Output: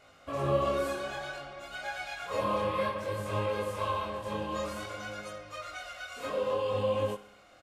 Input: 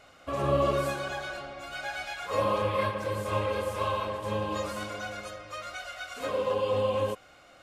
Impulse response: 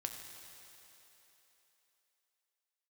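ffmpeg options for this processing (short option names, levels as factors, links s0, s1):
-filter_complex "[0:a]flanger=delay=19:depth=6.1:speed=0.57,asplit=2[s0][s1];[s1]aecho=0:1:63|126|189|252|315|378:0.141|0.0833|0.0492|0.029|0.0171|0.0101[s2];[s0][s2]amix=inputs=2:normalize=0"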